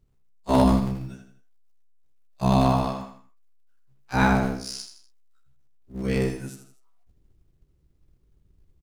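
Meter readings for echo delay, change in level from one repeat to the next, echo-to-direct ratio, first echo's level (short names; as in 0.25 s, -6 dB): 81 ms, -7.5 dB, -8.0 dB, -9.0 dB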